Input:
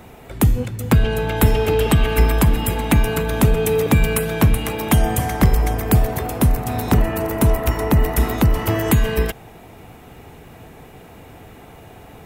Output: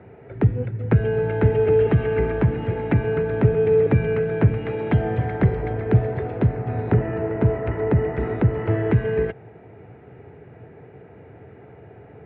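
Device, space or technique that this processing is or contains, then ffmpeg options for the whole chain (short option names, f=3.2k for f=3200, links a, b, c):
bass cabinet: -filter_complex "[0:a]highpass=f=76:w=0.5412,highpass=f=76:w=1.3066,equalizer=f=120:t=q:w=4:g=6,equalizer=f=240:t=q:w=4:g=-4,equalizer=f=420:t=q:w=4:g=7,equalizer=f=780:t=q:w=4:g=-3,equalizer=f=1.1k:t=q:w=4:g=-10,lowpass=f=2k:w=0.5412,lowpass=f=2k:w=1.3066,asettb=1/sr,asplit=3[a][b][c];[a]atrim=end=4.664[d];[b]atrim=start=4.66:end=6.54,asetpts=PTS-STARTPTS,afade=t=in:d=0.004:c=qsin,afade=t=out:st=1.876:d=0.004:c=qsin,equalizer=f=3.9k:t=o:w=0.76:g=5.5[e];[c]atrim=start=6.536[f];[d][e]acrossfade=d=0.004:c1=hsin:c2=qsin[g];[g][f]acrossfade=d=0.004:c1=qsin:c2=hsin,volume=-3.5dB"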